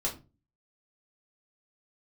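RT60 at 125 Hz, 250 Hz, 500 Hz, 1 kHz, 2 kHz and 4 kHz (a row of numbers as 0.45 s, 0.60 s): 0.50 s, 0.45 s, 0.35 s, 0.25 s, 0.25 s, 0.20 s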